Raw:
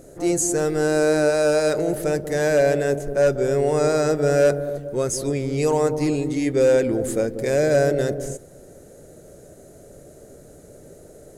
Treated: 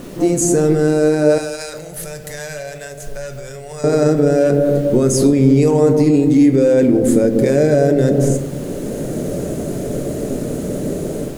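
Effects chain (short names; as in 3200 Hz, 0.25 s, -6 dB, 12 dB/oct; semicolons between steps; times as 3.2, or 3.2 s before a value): AGC gain up to 13.5 dB; added noise pink -44 dBFS; limiter -9.5 dBFS, peak gain reduction 8 dB; bell 230 Hz +12.5 dB 1.5 oct; compressor, threshold -13 dBFS, peak gain reduction 8.5 dB; 1.38–3.84 passive tone stack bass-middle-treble 10-0-10; reverb RT60 0.65 s, pre-delay 7 ms, DRR 7.5 dB; gain +2.5 dB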